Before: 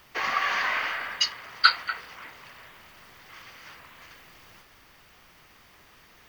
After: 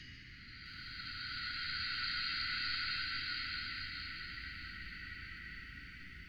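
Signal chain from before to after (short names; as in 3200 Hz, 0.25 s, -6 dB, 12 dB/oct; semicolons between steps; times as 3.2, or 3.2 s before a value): high shelf 6900 Hz -8 dB; Paulstretch 9.4×, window 0.50 s, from 1.41; Chebyshev band-stop 300–1900 Hz, order 3; RIAA curve playback; lo-fi delay 0.657 s, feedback 35%, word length 11-bit, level -7 dB; gain -6.5 dB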